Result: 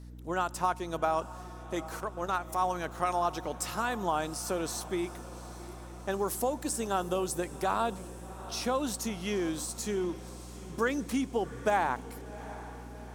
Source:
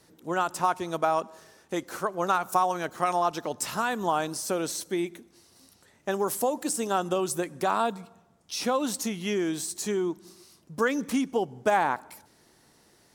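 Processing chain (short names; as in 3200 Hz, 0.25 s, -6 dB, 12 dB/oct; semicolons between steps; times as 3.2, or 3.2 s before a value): 2–2.6 transient shaper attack -7 dB, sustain -11 dB; diffused feedback echo 0.758 s, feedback 63%, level -16 dB; hum 60 Hz, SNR 13 dB; gain -4 dB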